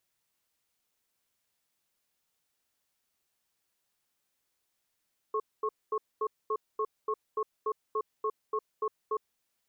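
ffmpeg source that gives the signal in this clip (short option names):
-f lavfi -i "aevalsrc='0.0316*(sin(2*PI*431*t)+sin(2*PI*1090*t))*clip(min(mod(t,0.29),0.06-mod(t,0.29))/0.005,0,1)':d=4.04:s=44100"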